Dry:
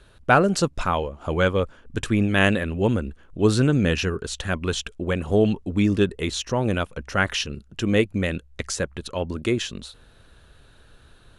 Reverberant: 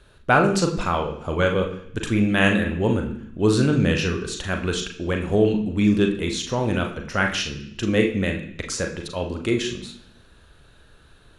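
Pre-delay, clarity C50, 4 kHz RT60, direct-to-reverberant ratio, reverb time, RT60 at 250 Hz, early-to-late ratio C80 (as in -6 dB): 35 ms, 8.5 dB, 0.85 s, 3.0 dB, 0.65 s, 0.85 s, 11.5 dB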